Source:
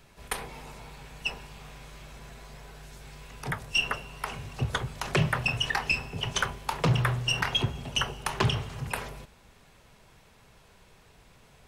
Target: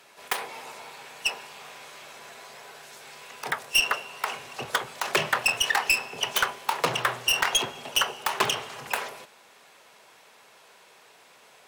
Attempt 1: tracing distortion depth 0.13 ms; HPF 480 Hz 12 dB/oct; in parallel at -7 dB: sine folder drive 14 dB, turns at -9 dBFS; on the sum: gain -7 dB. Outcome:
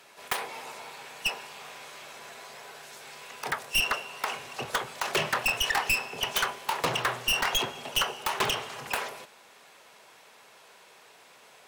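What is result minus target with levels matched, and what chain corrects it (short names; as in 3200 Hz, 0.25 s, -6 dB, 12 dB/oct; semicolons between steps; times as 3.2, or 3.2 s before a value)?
sine folder: distortion +12 dB
tracing distortion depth 0.13 ms; HPF 480 Hz 12 dB/oct; in parallel at -7 dB: sine folder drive 14 dB, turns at -1.5 dBFS; on the sum: gain -7 dB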